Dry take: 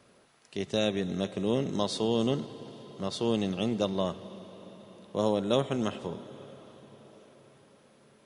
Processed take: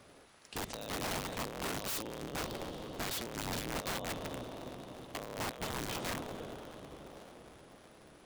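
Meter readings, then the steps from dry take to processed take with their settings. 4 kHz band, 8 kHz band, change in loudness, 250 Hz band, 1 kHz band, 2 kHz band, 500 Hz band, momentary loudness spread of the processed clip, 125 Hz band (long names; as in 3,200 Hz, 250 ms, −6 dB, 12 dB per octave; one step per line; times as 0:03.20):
−4.5 dB, +4.0 dB, −9.0 dB, −12.5 dB, −3.0 dB, +2.5 dB, −12.0 dB, 17 LU, −9.0 dB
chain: sub-harmonics by changed cycles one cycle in 3, inverted
compressor whose output falls as the input rises −33 dBFS, ratio −0.5
wrap-around overflow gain 29.5 dB
level −2 dB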